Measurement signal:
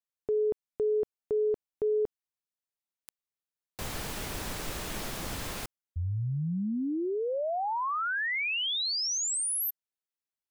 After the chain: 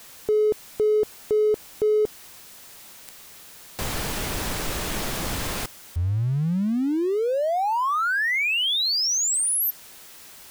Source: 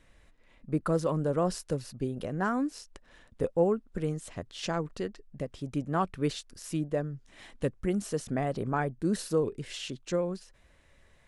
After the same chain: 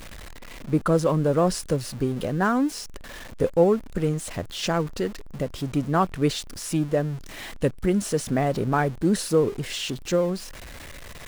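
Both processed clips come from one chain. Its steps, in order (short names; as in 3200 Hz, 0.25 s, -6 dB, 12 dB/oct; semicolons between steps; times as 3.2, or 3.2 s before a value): zero-crossing step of -42 dBFS; gain +6.5 dB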